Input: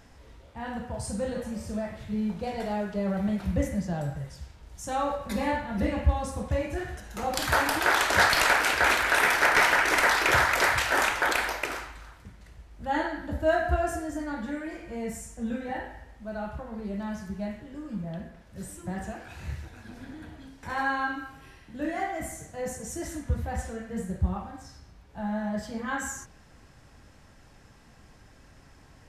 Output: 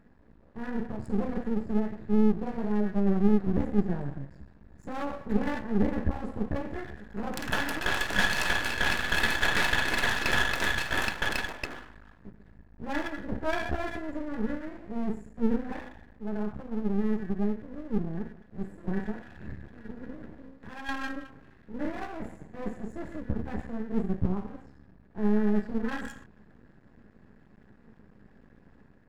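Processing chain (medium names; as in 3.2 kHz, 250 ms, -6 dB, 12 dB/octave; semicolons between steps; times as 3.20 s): local Wiener filter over 15 samples; small resonant body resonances 210/1700/2600 Hz, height 15 dB, ringing for 40 ms; 20.39–20.89 s: compression 2:1, threshold -39 dBFS, peak gain reduction 10.5 dB; half-wave rectifier; level rider gain up to 4 dB; trim -7 dB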